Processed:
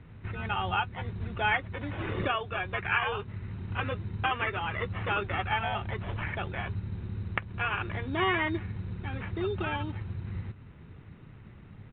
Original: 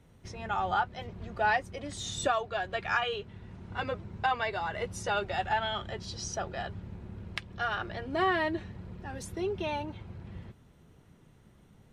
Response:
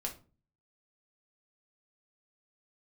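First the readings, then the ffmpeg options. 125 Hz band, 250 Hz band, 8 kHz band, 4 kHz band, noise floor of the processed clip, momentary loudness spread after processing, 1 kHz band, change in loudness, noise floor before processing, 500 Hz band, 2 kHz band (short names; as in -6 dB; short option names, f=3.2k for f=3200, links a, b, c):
+8.0 dB, +2.5 dB, under -35 dB, 0.0 dB, -50 dBFS, 14 LU, -1.0 dB, +1.0 dB, -60 dBFS, -2.0 dB, +2.5 dB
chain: -filter_complex "[0:a]equalizer=f=100:t=o:w=0.67:g=7,equalizer=f=630:t=o:w=0.67:g=-8,equalizer=f=2.5k:t=o:w=0.67:g=6,asplit=2[a][b];[b]acompressor=threshold=-45dB:ratio=6,volume=2.5dB[c];[a][c]amix=inputs=2:normalize=0,acrusher=samples=11:mix=1:aa=0.000001,aresample=8000,aresample=44100"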